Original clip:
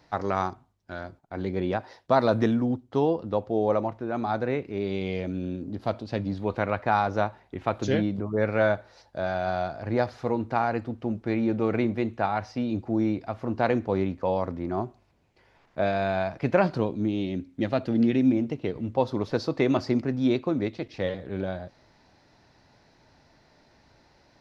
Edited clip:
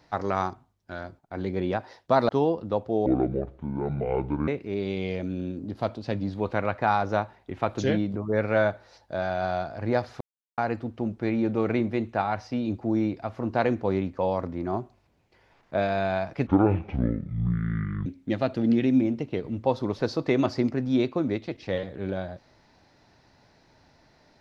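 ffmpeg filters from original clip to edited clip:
-filter_complex "[0:a]asplit=8[s0][s1][s2][s3][s4][s5][s6][s7];[s0]atrim=end=2.292[s8];[s1]atrim=start=2.898:end=3.674[s9];[s2]atrim=start=3.67:end=4.52,asetpts=PTS-STARTPTS,asetrate=26460,aresample=44100[s10];[s3]atrim=start=4.516:end=10.25,asetpts=PTS-STARTPTS,afade=t=out:st=5.73:d=0.004:c=hsin[s11];[s4]atrim=start=10.25:end=10.62,asetpts=PTS-STARTPTS,volume=0[s12];[s5]atrim=start=10.62:end=16.514,asetpts=PTS-STARTPTS,afade=t=in:d=0.004:c=hsin[s13];[s6]atrim=start=16.51:end=17.37,asetpts=PTS-STARTPTS,asetrate=23814,aresample=44100,atrim=end_sample=70233,asetpts=PTS-STARTPTS[s14];[s7]atrim=start=17.366[s15];[s8][s9]acrossfade=d=0.004:c1=hsin:c2=hsin[s16];[s16][s10]acrossfade=d=0.004:c1=hsin:c2=hsin[s17];[s11][s12][s13]concat=n=3:v=0:a=1[s18];[s17][s18]acrossfade=d=0.004:c1=hsin:c2=hsin[s19];[s19][s14]acrossfade=d=0.004:c1=hsin:c2=hsin[s20];[s20][s15]acrossfade=d=0.004:c1=hsin:c2=hsin"

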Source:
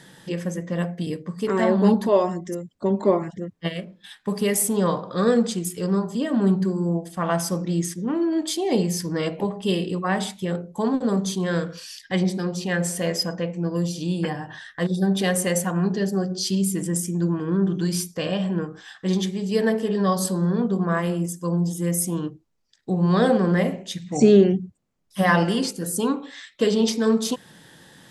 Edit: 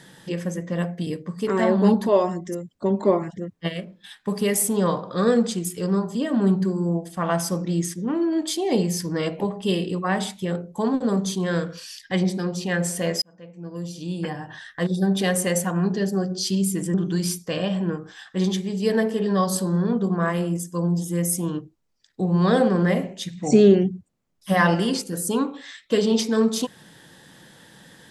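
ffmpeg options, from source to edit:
-filter_complex "[0:a]asplit=3[s0][s1][s2];[s0]atrim=end=13.22,asetpts=PTS-STARTPTS,afade=t=out:st=13.216:d=0.004:c=hsin[s3];[s1]atrim=start=13.22:end=16.942,asetpts=PTS-STARTPTS,afade=t=in:d=1.45[s4];[s2]atrim=start=17.628[s5];[s3][s4]concat=n=2:v=0:a=1[s6];[s6][s5]acrossfade=d=0.004:c1=hsin:c2=hsin"

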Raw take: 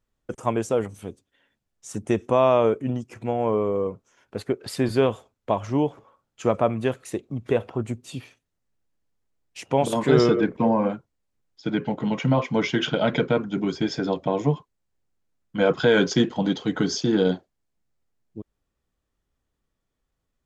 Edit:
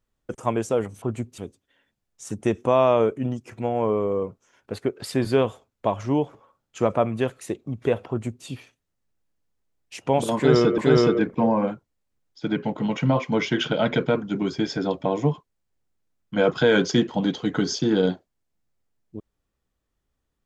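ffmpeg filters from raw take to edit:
-filter_complex "[0:a]asplit=4[s0][s1][s2][s3];[s0]atrim=end=1.022[s4];[s1]atrim=start=7.728:end=8.092[s5];[s2]atrim=start=1.018:end=10.422[s6];[s3]atrim=start=9.998[s7];[s4][s5]acrossfade=d=0.004:c1=hsin:c2=hsin[s8];[s8][s6]acrossfade=d=0.004:c1=hsin:c2=hsin[s9];[s9][s7]acrossfade=d=0.004:c1=hsin:c2=hsin"

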